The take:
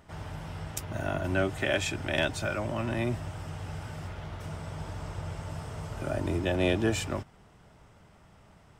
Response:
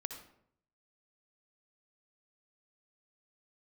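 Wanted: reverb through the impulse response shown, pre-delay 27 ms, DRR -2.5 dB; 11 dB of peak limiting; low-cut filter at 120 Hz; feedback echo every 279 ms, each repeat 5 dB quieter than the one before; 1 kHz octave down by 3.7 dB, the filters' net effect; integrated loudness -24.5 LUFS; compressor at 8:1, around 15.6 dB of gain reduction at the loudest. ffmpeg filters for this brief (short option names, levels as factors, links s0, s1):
-filter_complex "[0:a]highpass=120,equalizer=f=1000:t=o:g=-5.5,acompressor=threshold=0.01:ratio=8,alimiter=level_in=3.55:limit=0.0631:level=0:latency=1,volume=0.282,aecho=1:1:279|558|837|1116|1395|1674|1953:0.562|0.315|0.176|0.0988|0.0553|0.031|0.0173,asplit=2[s0][s1];[1:a]atrim=start_sample=2205,adelay=27[s2];[s1][s2]afir=irnorm=-1:irlink=0,volume=1.58[s3];[s0][s3]amix=inputs=2:normalize=0,volume=5.96"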